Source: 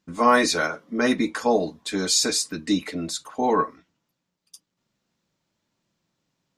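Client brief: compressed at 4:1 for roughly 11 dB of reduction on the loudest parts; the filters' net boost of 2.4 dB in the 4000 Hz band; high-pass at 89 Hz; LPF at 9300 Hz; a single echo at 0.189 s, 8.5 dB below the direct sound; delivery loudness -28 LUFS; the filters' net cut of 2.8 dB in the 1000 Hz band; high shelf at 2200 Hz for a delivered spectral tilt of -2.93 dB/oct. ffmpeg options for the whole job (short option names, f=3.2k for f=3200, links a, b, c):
-af "highpass=89,lowpass=9.3k,equalizer=f=1k:t=o:g=-3,highshelf=f=2.2k:g=-3.5,equalizer=f=4k:t=o:g=6.5,acompressor=threshold=-29dB:ratio=4,aecho=1:1:189:0.376,volume=3.5dB"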